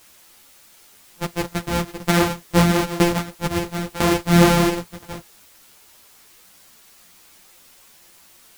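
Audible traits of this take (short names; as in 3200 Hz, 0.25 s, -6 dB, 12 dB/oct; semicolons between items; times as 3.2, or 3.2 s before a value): a buzz of ramps at a fixed pitch in blocks of 256 samples; tremolo saw down 1 Hz, depth 85%; a quantiser's noise floor 10-bit, dither triangular; a shimmering, thickened sound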